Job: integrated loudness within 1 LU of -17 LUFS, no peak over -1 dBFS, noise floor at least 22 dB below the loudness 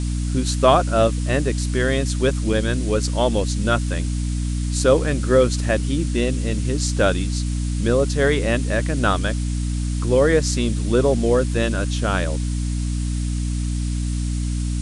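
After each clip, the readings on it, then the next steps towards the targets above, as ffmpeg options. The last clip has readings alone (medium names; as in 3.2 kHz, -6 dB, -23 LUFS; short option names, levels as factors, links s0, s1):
hum 60 Hz; highest harmonic 300 Hz; hum level -20 dBFS; noise floor -23 dBFS; noise floor target -43 dBFS; loudness -21.0 LUFS; peak level -1.0 dBFS; loudness target -17.0 LUFS
-> -af "bandreject=f=60:t=h:w=6,bandreject=f=120:t=h:w=6,bandreject=f=180:t=h:w=6,bandreject=f=240:t=h:w=6,bandreject=f=300:t=h:w=6"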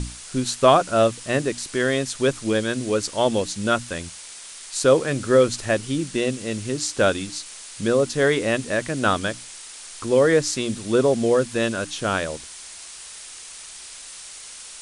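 hum not found; noise floor -40 dBFS; noise floor target -44 dBFS
-> -af "afftdn=nr=6:nf=-40"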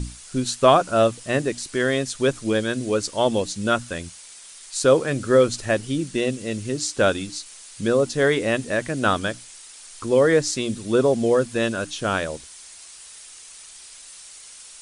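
noise floor -44 dBFS; loudness -22.0 LUFS; peak level -2.0 dBFS; loudness target -17.0 LUFS
-> -af "volume=1.78,alimiter=limit=0.891:level=0:latency=1"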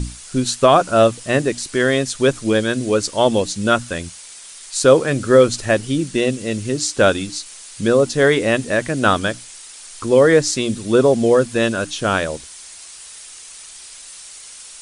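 loudness -17.0 LUFS; peak level -1.0 dBFS; noise floor -39 dBFS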